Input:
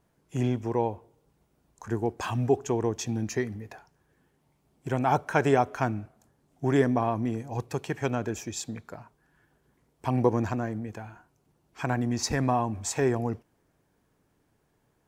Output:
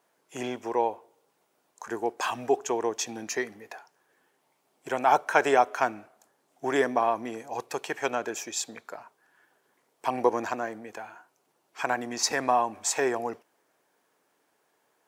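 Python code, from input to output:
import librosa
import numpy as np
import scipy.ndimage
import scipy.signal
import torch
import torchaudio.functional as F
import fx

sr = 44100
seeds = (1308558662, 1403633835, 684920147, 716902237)

y = scipy.signal.sosfilt(scipy.signal.butter(2, 510.0, 'highpass', fs=sr, output='sos'), x)
y = F.gain(torch.from_numpy(y), 4.5).numpy()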